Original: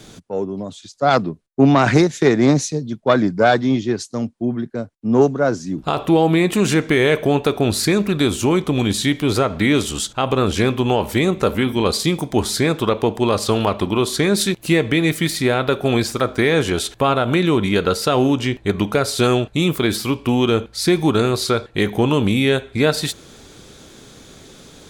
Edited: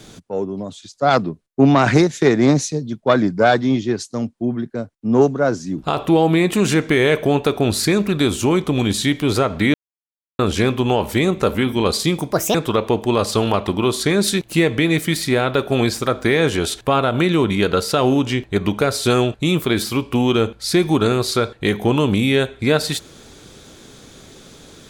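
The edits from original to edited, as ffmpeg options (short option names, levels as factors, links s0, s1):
-filter_complex "[0:a]asplit=5[s0][s1][s2][s3][s4];[s0]atrim=end=9.74,asetpts=PTS-STARTPTS,afade=t=out:st=9.736:d=0.004:c=hsin[s5];[s1]atrim=start=9.74:end=10.39,asetpts=PTS-STARTPTS,volume=0[s6];[s2]atrim=start=10.39:end=12.324,asetpts=PTS-STARTPTS,afade=t=in:d=0.004:c=hsin[s7];[s3]atrim=start=12.32:end=12.68,asetpts=PTS-STARTPTS,asetrate=70119,aresample=44100[s8];[s4]atrim=start=12.676[s9];[s5][s6][s7]concat=n=3:v=0:a=1[s10];[s10][s8]acrossfade=d=0.004:c1=hsin:c2=hsin[s11];[s11][s9]acrossfade=d=0.004:c1=hsin:c2=hsin"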